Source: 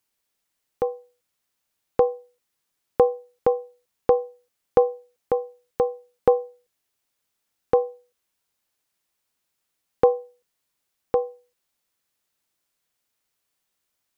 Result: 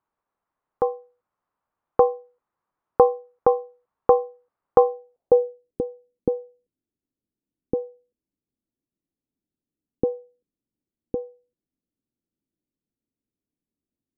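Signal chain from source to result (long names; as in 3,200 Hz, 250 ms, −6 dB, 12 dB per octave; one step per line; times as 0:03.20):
low-pass filter sweep 1,100 Hz → 280 Hz, 0:04.83–0:05.85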